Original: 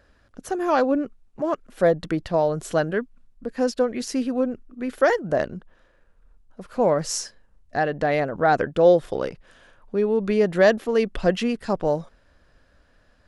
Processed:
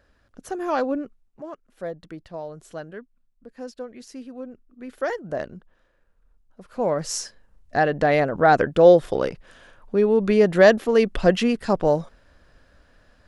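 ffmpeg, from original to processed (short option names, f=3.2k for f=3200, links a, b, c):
-af "volume=13dB,afade=t=out:st=0.87:d=0.65:silence=0.316228,afade=t=in:st=4.38:d=0.98:silence=0.421697,afade=t=in:st=6.64:d=1.17:silence=0.354813"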